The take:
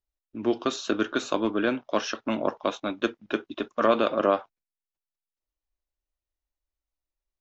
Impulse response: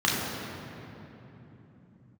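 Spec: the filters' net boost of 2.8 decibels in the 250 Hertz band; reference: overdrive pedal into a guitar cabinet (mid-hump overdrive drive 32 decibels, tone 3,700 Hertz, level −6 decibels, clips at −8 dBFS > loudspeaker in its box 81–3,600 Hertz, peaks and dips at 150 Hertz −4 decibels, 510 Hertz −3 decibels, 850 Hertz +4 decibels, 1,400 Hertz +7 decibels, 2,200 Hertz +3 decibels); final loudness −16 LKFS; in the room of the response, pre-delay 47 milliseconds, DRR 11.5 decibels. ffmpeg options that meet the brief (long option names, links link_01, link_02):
-filter_complex "[0:a]equalizer=frequency=250:width_type=o:gain=4,asplit=2[link_01][link_02];[1:a]atrim=start_sample=2205,adelay=47[link_03];[link_02][link_03]afir=irnorm=-1:irlink=0,volume=-27dB[link_04];[link_01][link_04]amix=inputs=2:normalize=0,asplit=2[link_05][link_06];[link_06]highpass=frequency=720:poles=1,volume=32dB,asoftclip=type=tanh:threshold=-8dB[link_07];[link_05][link_07]amix=inputs=2:normalize=0,lowpass=frequency=3700:poles=1,volume=-6dB,highpass=81,equalizer=frequency=150:width_type=q:width=4:gain=-4,equalizer=frequency=510:width_type=q:width=4:gain=-3,equalizer=frequency=850:width_type=q:width=4:gain=4,equalizer=frequency=1400:width_type=q:width=4:gain=7,equalizer=frequency=2200:width_type=q:width=4:gain=3,lowpass=frequency=3600:width=0.5412,lowpass=frequency=3600:width=1.3066,volume=-0.5dB"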